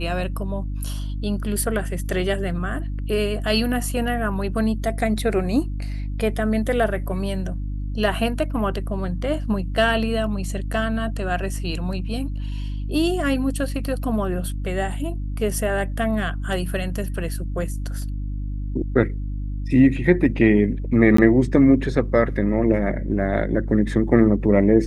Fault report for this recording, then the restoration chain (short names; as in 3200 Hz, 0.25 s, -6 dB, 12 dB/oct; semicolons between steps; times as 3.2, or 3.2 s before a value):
hum 50 Hz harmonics 6 -27 dBFS
21.17–21.18 gap 14 ms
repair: de-hum 50 Hz, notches 6; interpolate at 21.17, 14 ms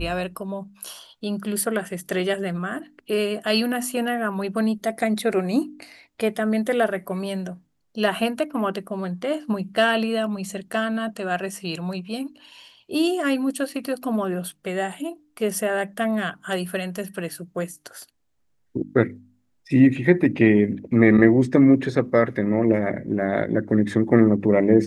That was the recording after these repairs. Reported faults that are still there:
none